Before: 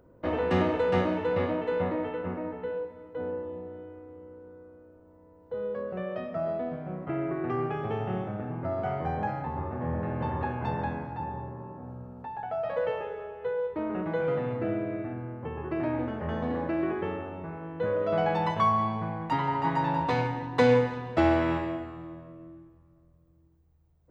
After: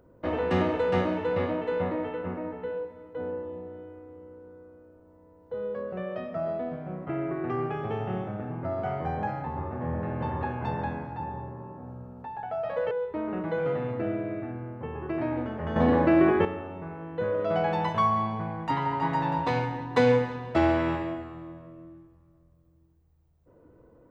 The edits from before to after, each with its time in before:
0:12.91–0:13.53: remove
0:16.38–0:17.07: clip gain +9 dB

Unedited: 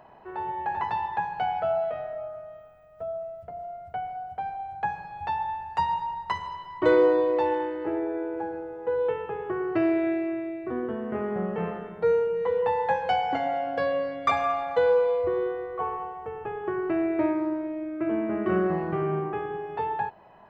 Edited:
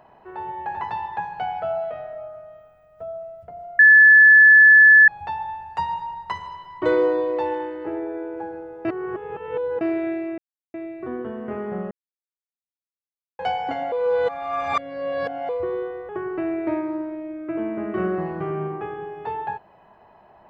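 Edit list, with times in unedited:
0:03.79–0:05.08: beep over 1,730 Hz −7 dBFS
0:08.85–0:09.81: reverse
0:10.38: splice in silence 0.36 s
0:11.55–0:13.03: silence
0:13.56–0:15.13: reverse
0:15.73–0:16.61: remove

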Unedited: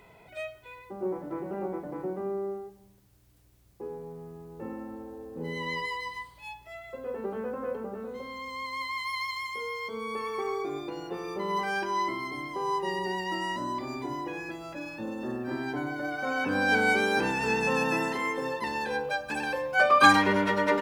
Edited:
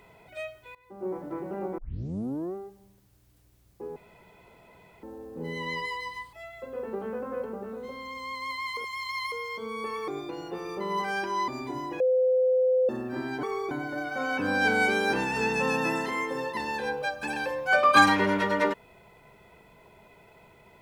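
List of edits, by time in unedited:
0:00.75–0:01.16: fade in, from −17.5 dB
0:01.78: tape start 0.77 s
0:03.96–0:05.03: fill with room tone
0:06.33–0:06.64: remove
0:09.08–0:09.63: reverse
0:10.39–0:10.67: move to 0:15.78
0:12.07–0:13.83: remove
0:14.35–0:15.24: beep over 512 Hz −19.5 dBFS

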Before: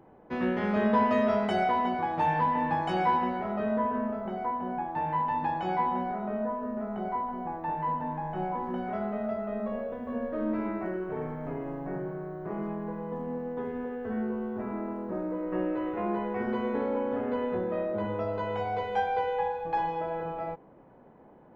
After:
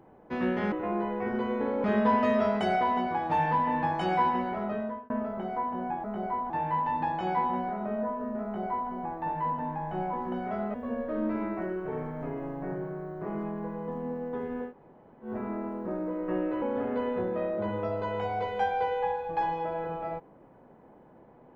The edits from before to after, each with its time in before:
0:03.52–0:03.98: fade out
0:06.86–0:07.32: duplicate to 0:04.92
0:09.16–0:09.98: remove
0:13.93–0:14.50: fill with room tone, crossfade 0.10 s
0:15.86–0:16.98: move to 0:00.72

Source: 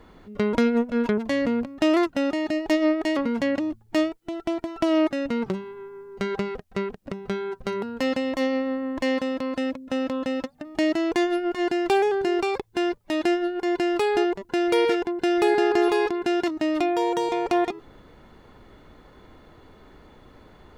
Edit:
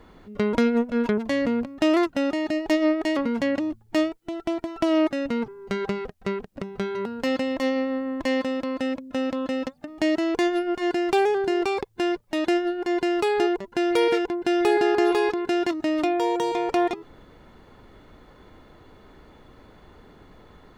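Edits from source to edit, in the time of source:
0:05.48–0:05.98: remove
0:07.45–0:07.72: remove

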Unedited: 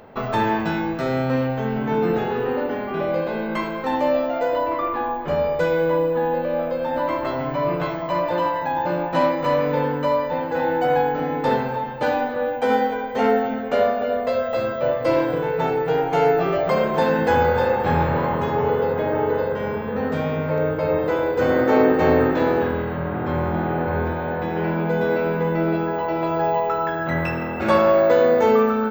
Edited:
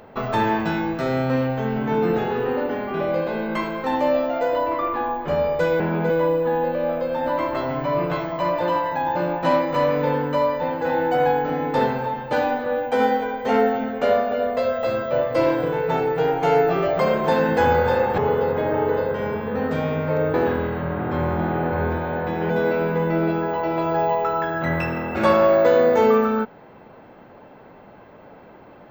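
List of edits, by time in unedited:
0:17.88–0:18.59: remove
0:20.75–0:22.49: remove
0:24.65–0:24.95: move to 0:05.80

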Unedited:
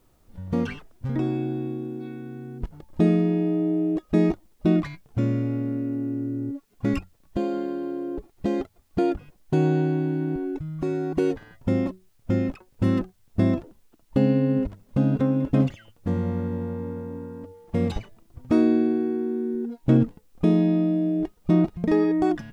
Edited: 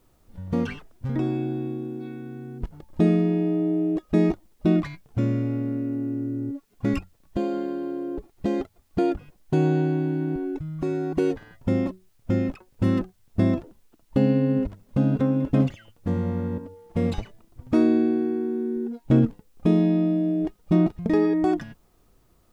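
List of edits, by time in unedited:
0:16.58–0:17.36: remove

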